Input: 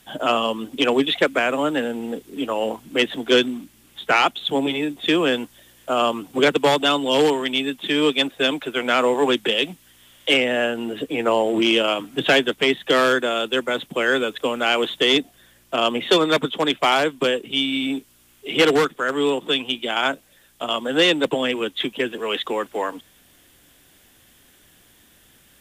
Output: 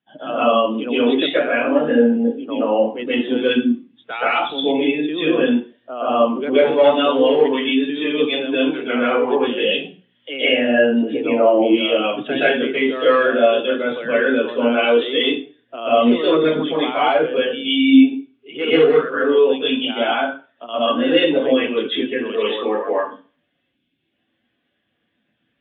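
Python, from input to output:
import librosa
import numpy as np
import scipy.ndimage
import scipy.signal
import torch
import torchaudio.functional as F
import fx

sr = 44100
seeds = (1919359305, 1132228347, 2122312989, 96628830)

p1 = scipy.signal.sosfilt(scipy.signal.butter(4, 3400.0, 'lowpass', fs=sr, output='sos'), x)
p2 = fx.spec_box(p1, sr, start_s=23.58, length_s=0.41, low_hz=410.0, high_hz=2100.0, gain_db=-7)
p3 = scipy.signal.sosfilt(scipy.signal.butter(2, 100.0, 'highpass', fs=sr, output='sos'), p2)
p4 = fx.over_compress(p3, sr, threshold_db=-24.0, ratio=-1.0)
p5 = p3 + (p4 * librosa.db_to_amplitude(-1.0))
p6 = fx.rev_plate(p5, sr, seeds[0], rt60_s=0.53, hf_ratio=0.95, predelay_ms=110, drr_db=-8.0)
p7 = fx.spectral_expand(p6, sr, expansion=1.5)
y = p7 * librosa.db_to_amplitude(-8.5)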